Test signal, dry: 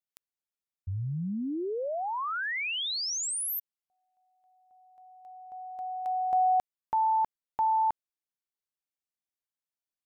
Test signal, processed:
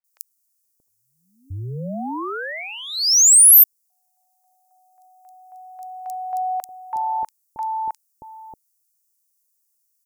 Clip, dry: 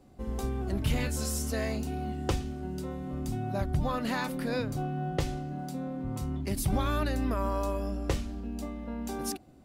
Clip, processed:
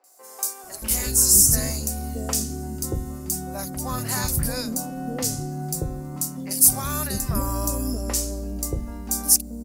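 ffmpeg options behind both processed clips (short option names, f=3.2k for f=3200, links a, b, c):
-filter_complex "[0:a]aexciter=amount=4.1:drive=9.8:freq=5k,acrossover=split=550|2800[a][b][c];[c]adelay=40[d];[a]adelay=630[e];[e][b][d]amix=inputs=3:normalize=0,volume=3dB"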